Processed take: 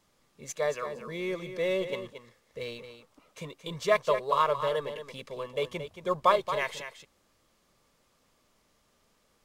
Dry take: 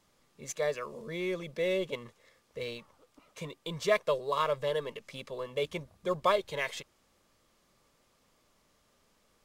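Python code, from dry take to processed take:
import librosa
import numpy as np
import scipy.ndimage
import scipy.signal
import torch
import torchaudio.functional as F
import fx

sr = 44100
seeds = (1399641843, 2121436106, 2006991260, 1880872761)

y = fx.dynamic_eq(x, sr, hz=1000.0, q=1.3, threshold_db=-43.0, ratio=4.0, max_db=6)
y = y + 10.0 ** (-10.0 / 20.0) * np.pad(y, (int(225 * sr / 1000.0), 0))[:len(y)]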